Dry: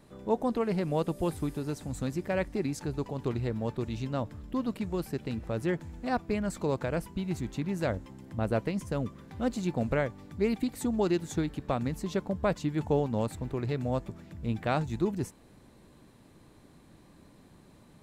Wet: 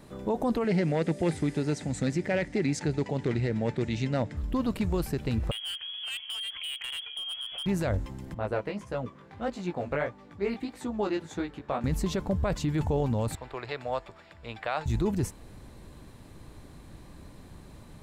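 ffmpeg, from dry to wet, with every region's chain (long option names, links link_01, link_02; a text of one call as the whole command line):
ffmpeg -i in.wav -filter_complex "[0:a]asettb=1/sr,asplit=3[link_01][link_02][link_03];[link_01]atrim=end=0.644[link_04];[link_02]atrim=start=0.64:end=4.37,asetpts=PTS-STARTPTS,afade=type=in:duration=0.004:curve=qsin,afade=type=out:start_time=3.726:duration=0.004:curve=qsin,volume=22.5dB,asoftclip=hard,volume=-22.5dB,highpass=140,equalizer=frequency=160:width_type=q:width=4:gain=3,equalizer=frequency=1100:width_type=q:width=4:gain=-9,equalizer=frequency=2000:width_type=q:width=4:gain=8,lowpass=frequency=8500:width=0.5412,lowpass=frequency=8500:width=1.3066[link_05];[link_03]atrim=start=4.366[link_06];[link_04][link_05]acrossfade=duration=0.004:curve1=hsin:curve2=qsin[link_07];[link_07][link_06]acrossfade=duration=0.004:curve1=qsin:curve2=hsin,asettb=1/sr,asplit=3[link_08][link_09][link_10];[link_08]atrim=end=5.514[link_11];[link_09]atrim=start=5.51:end=7.66,asetpts=PTS-STARTPTS,afade=type=in:duration=0.004:curve=qsin,afade=type=out:start_time=2.146:duration=0.004:curve=qsin,lowpass=frequency=2900:width_type=q:width=0.5098,lowpass=frequency=2900:width_type=q:width=0.6013,lowpass=frequency=2900:width_type=q:width=0.9,lowpass=frequency=2900:width_type=q:width=2.563,afreqshift=-3400,asoftclip=type=hard:threshold=-29.5dB,acompressor=threshold=-41dB:ratio=6:attack=3.2:release=140:knee=1:detection=peak[link_12];[link_10]atrim=start=7.656[link_13];[link_11][link_12]acrossfade=duration=0.004:curve1=hsin:curve2=qsin[link_14];[link_14][link_13]acrossfade=duration=0.004:curve1=qsin:curve2=hsin,asettb=1/sr,asplit=3[link_15][link_16][link_17];[link_15]atrim=end=8.344[link_18];[link_16]atrim=start=8.34:end=11.84,asetpts=PTS-STARTPTS,afade=type=in:duration=0.004:curve=qsin,afade=type=out:start_time=3.496:duration=0.004:curve=qsin,highpass=frequency=500:poles=1,aemphasis=mode=reproduction:type=75fm,flanger=delay=15.5:depth=5.3:speed=1.6[link_19];[link_17]atrim=start=11.836[link_20];[link_18][link_19]acrossfade=duration=0.004:curve1=hsin:curve2=qsin[link_21];[link_21][link_20]acrossfade=duration=0.004:curve1=qsin:curve2=hsin,asettb=1/sr,asplit=3[link_22][link_23][link_24];[link_22]atrim=end=13.354[link_25];[link_23]atrim=start=13.35:end=14.86,asetpts=PTS-STARTPTS,afade=type=in:duration=0.004:curve=qsin,afade=type=out:start_time=1.506:duration=0.004:curve=qsin,acrossover=split=520 6200:gain=0.0794 1 0.141[link_26][link_27][link_28];[link_26][link_27][link_28]amix=inputs=3:normalize=0,bandreject=frequency=6100:width=5.8[link_29];[link_24]atrim=start=14.856[link_30];[link_25][link_29]acrossfade=duration=0.004:curve1=hsin:curve2=qsin[link_31];[link_31][link_30]acrossfade=duration=0.004:curve1=qsin:curve2=hsin,asubboost=boost=2.5:cutoff=110,alimiter=level_in=1.5dB:limit=-24dB:level=0:latency=1:release=16,volume=-1.5dB,volume=6.5dB" out.wav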